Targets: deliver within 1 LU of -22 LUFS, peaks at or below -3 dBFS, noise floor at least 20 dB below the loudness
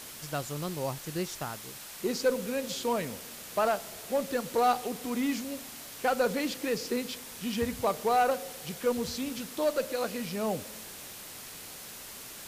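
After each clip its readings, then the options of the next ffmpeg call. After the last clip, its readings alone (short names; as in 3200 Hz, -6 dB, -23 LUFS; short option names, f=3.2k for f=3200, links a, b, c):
noise floor -45 dBFS; noise floor target -52 dBFS; loudness -32.0 LUFS; peak -16.0 dBFS; loudness target -22.0 LUFS
-> -af "afftdn=nr=7:nf=-45"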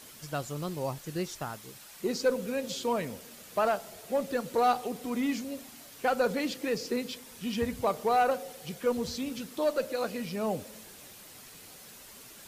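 noise floor -50 dBFS; noise floor target -52 dBFS
-> -af "afftdn=nr=6:nf=-50"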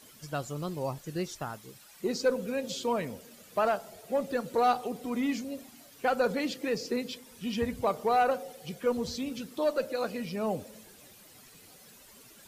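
noise floor -55 dBFS; loudness -32.0 LUFS; peak -16.5 dBFS; loudness target -22.0 LUFS
-> -af "volume=10dB"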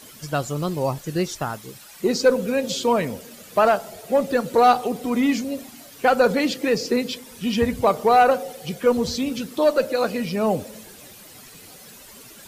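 loudness -22.0 LUFS; peak -6.5 dBFS; noise floor -45 dBFS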